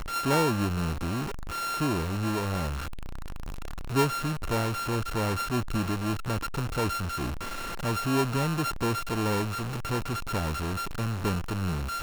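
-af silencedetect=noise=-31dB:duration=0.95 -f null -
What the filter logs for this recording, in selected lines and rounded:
silence_start: 2.78
silence_end: 3.91 | silence_duration: 1.14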